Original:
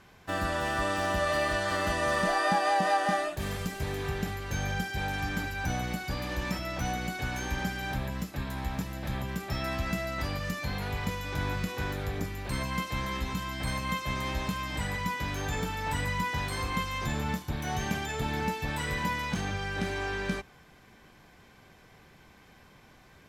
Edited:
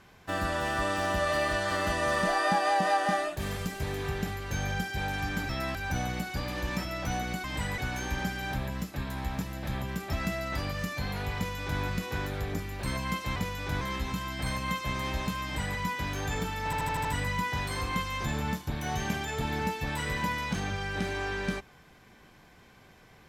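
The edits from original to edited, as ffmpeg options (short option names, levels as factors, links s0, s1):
-filter_complex "[0:a]asplit=13[s0][s1][s2][s3][s4][s5][s6][s7][s8][s9][s10][s11][s12];[s0]atrim=end=5.492[s13];[s1]atrim=start=9.528:end=9.792[s14];[s2]atrim=start=5.488:end=7.182[s15];[s3]atrim=start=14.638:end=14.982[s16];[s4]atrim=start=7.178:end=9.532[s17];[s5]atrim=start=9.788:end=13.022[s18];[s6]atrim=start=11.018:end=11.472[s19];[s7]atrim=start=13.018:end=15.942[s20];[s8]atrim=start=15.858:end=15.942[s21];[s9]atrim=start=15.858:end=15.942[s22];[s10]atrim=start=15.858:end=15.942[s23];[s11]atrim=start=15.858:end=15.942[s24];[s12]atrim=start=15.858[s25];[s13][s14]acrossfade=d=0.004:c1=hsin:c2=hsin[s26];[s26][s15]acrossfade=d=0.004:c1=hsin:c2=hsin[s27];[s27][s16]acrossfade=d=0.004:c1=hsin:c2=hsin[s28];[s28][s17]acrossfade=d=0.004:c1=hsin:c2=hsin[s29];[s29][s18]acrossfade=d=0.004:c1=hsin:c2=hsin[s30];[s30][s19]acrossfade=d=0.004:c1=hsin:c2=hsin[s31];[s31][s20]acrossfade=d=0.004:c1=hsin:c2=hsin[s32];[s32][s21]acrossfade=d=0.004:c1=hsin:c2=hsin[s33];[s33][s22]acrossfade=d=0.004:c1=hsin:c2=hsin[s34];[s34][s23]acrossfade=d=0.004:c1=hsin:c2=hsin[s35];[s35][s24]acrossfade=d=0.004:c1=hsin:c2=hsin[s36];[s36][s25]acrossfade=d=0.004:c1=hsin:c2=hsin"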